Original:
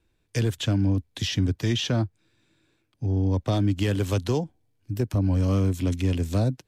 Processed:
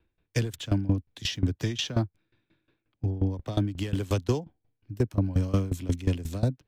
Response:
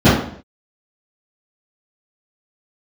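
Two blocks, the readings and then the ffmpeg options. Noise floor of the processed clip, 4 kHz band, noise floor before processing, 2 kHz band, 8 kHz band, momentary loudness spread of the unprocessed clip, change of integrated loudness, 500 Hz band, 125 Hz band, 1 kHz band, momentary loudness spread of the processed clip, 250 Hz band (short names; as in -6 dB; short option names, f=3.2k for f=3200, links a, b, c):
-81 dBFS, -3.5 dB, -71 dBFS, -3.5 dB, -3.0 dB, 6 LU, -4.0 dB, -3.5 dB, -4.0 dB, -4.0 dB, 5 LU, -4.0 dB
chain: -filter_complex "[0:a]acrossover=split=270|4000[a][b][c];[c]aeval=exprs='val(0)*gte(abs(val(0)),0.00119)':c=same[d];[a][b][d]amix=inputs=3:normalize=0,aeval=exprs='val(0)*pow(10,-19*if(lt(mod(5.6*n/s,1),2*abs(5.6)/1000),1-mod(5.6*n/s,1)/(2*abs(5.6)/1000),(mod(5.6*n/s,1)-2*abs(5.6)/1000)/(1-2*abs(5.6)/1000))/20)':c=same,volume=2.5dB"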